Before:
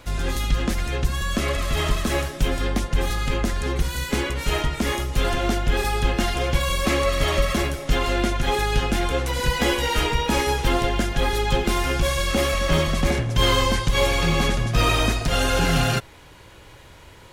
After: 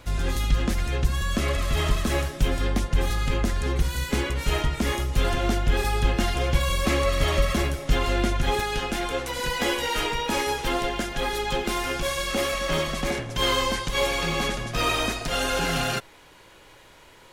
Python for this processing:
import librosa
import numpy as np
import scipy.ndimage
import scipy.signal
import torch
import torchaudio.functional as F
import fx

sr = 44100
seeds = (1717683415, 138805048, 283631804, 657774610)

y = fx.peak_eq(x, sr, hz=73.0, db=fx.steps((0.0, 3.0), (8.6, -12.0)), octaves=2.2)
y = F.gain(torch.from_numpy(y), -2.5).numpy()